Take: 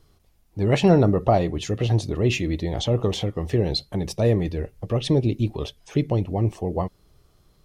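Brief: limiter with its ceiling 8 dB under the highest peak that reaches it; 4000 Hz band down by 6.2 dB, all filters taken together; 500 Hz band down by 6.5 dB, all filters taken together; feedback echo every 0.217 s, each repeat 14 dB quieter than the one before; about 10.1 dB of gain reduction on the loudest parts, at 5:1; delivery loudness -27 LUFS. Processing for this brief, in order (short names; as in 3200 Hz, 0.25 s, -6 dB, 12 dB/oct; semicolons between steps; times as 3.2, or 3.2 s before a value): bell 500 Hz -8.5 dB; bell 4000 Hz -7.5 dB; compressor 5:1, threshold -26 dBFS; limiter -24 dBFS; feedback echo 0.217 s, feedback 20%, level -14 dB; gain +7.5 dB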